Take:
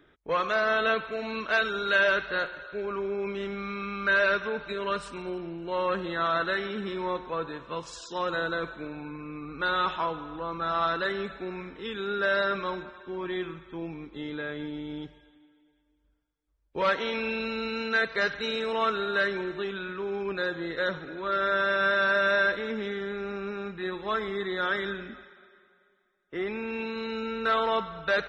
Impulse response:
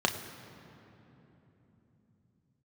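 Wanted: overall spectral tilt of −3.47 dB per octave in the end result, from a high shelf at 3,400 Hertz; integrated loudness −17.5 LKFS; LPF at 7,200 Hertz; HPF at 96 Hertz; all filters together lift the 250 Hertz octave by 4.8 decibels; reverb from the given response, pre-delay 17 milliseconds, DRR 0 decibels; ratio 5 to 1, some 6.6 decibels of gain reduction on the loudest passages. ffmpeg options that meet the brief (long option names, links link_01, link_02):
-filter_complex "[0:a]highpass=96,lowpass=7200,equalizer=frequency=250:width_type=o:gain=7,highshelf=frequency=3400:gain=3.5,acompressor=threshold=-26dB:ratio=5,asplit=2[link_01][link_02];[1:a]atrim=start_sample=2205,adelay=17[link_03];[link_02][link_03]afir=irnorm=-1:irlink=0,volume=-10.5dB[link_04];[link_01][link_04]amix=inputs=2:normalize=0,volume=10dB"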